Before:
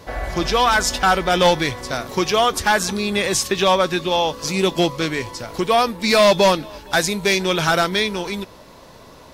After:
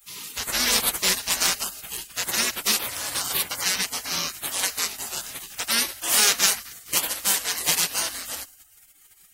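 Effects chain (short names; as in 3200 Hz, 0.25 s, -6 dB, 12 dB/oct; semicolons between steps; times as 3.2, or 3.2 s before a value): tilt +3.5 dB/oct; spring tank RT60 2.2 s, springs 55/60 ms, chirp 50 ms, DRR 19.5 dB; spectral gate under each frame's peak -20 dB weak; gain +3.5 dB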